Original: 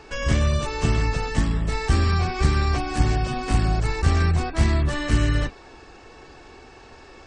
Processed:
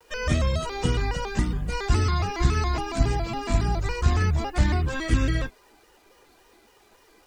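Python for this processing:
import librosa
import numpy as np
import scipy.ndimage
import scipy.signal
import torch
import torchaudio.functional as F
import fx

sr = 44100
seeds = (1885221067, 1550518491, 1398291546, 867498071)

y = fx.bin_expand(x, sr, power=1.5)
y = fx.quant_dither(y, sr, seeds[0], bits=10, dither='none')
y = fx.vibrato_shape(y, sr, shape='square', rate_hz=3.6, depth_cents=160.0)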